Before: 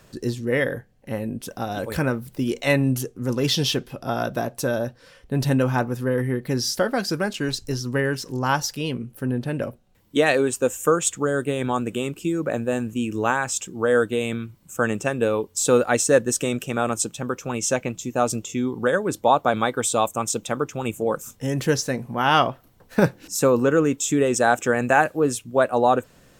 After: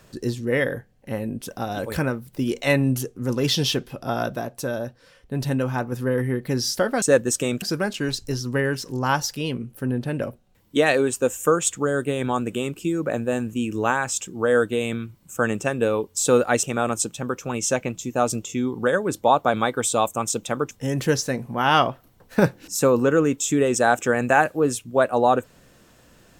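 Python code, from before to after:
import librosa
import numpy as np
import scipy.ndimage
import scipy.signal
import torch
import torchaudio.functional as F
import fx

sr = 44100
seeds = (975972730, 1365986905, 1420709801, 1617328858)

y = fx.edit(x, sr, fx.fade_out_to(start_s=1.97, length_s=0.36, floor_db=-6.5),
    fx.clip_gain(start_s=4.35, length_s=1.57, db=-3.5),
    fx.move(start_s=16.03, length_s=0.6, to_s=7.02),
    fx.cut(start_s=20.71, length_s=0.6), tone=tone)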